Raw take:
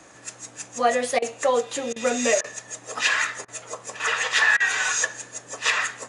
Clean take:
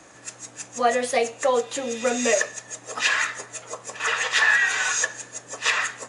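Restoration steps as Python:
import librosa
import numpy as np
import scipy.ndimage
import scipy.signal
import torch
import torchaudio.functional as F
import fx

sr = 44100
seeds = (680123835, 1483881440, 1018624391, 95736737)

y = fx.fix_interpolate(x, sr, at_s=(1.19, 1.93, 2.41, 3.45, 4.57), length_ms=30.0)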